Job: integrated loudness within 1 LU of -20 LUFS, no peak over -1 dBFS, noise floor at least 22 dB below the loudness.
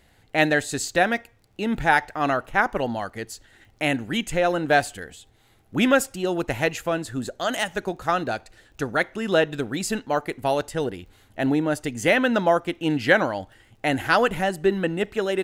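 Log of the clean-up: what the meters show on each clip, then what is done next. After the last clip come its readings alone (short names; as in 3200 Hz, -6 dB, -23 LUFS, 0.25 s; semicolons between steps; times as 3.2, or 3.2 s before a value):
ticks 19/s; loudness -23.5 LUFS; peak -2.5 dBFS; loudness target -20.0 LUFS
-> de-click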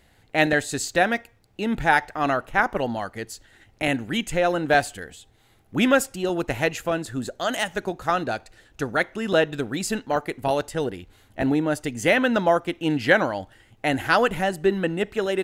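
ticks 0.71/s; loudness -24.0 LUFS; peak -2.5 dBFS; loudness target -20.0 LUFS
-> gain +4 dB; limiter -1 dBFS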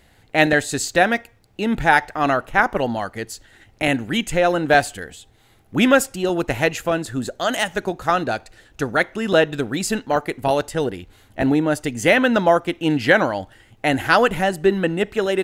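loudness -20.0 LUFS; peak -1.0 dBFS; noise floor -55 dBFS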